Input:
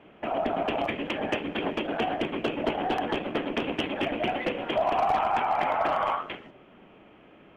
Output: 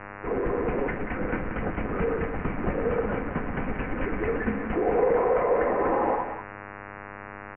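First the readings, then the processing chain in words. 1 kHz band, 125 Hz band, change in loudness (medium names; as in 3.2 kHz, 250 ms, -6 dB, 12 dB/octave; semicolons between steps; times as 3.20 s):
-3.0 dB, +8.0 dB, +1.0 dB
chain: jump at every zero crossing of -34.5 dBFS; gate -30 dBFS, range -14 dB; peaking EQ 160 Hz -5 dB 1.3 oct; comb 3.9 ms, depth 38%; delay 184 ms -8.5 dB; mains buzz 100 Hz, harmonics 31, -39 dBFS 0 dB/octave; mistuned SSB -280 Hz 210–2200 Hz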